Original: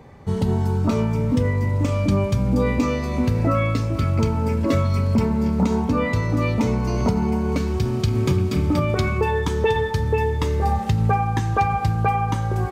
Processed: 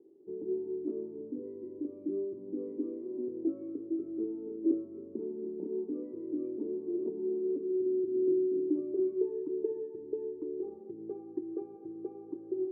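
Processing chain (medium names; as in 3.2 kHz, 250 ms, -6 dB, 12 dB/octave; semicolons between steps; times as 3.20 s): Butterworth band-pass 350 Hz, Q 4.8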